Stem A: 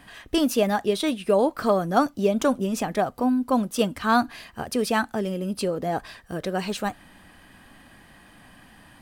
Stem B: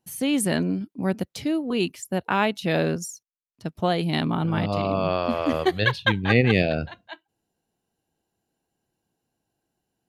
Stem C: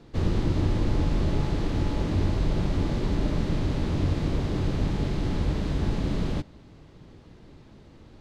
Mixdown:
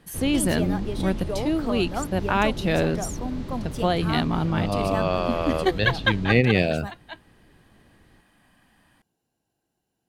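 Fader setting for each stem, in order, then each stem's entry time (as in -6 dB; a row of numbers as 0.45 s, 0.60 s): -10.0 dB, 0.0 dB, -7.5 dB; 0.00 s, 0.00 s, 0.00 s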